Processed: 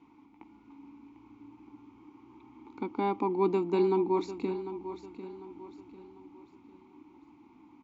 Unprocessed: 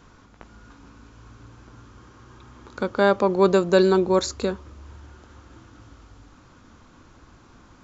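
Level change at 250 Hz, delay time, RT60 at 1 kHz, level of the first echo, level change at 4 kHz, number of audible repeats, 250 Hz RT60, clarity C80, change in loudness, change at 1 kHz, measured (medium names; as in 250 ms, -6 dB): -7.0 dB, 748 ms, no reverb, -12.0 dB, -18.0 dB, 3, no reverb, no reverb, -10.5 dB, -7.0 dB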